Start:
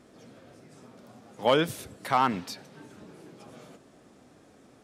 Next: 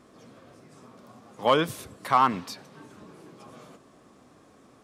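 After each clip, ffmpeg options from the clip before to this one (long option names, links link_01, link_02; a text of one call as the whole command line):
ffmpeg -i in.wav -af "equalizer=frequency=1100:width=6.1:gain=10" out.wav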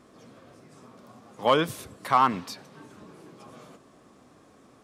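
ffmpeg -i in.wav -af anull out.wav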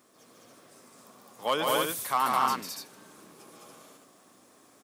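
ffmpeg -i in.wav -af "aemphasis=mode=production:type=bsi,aecho=1:1:148.7|209.9|285.7:0.631|0.891|0.708,volume=-6.5dB" out.wav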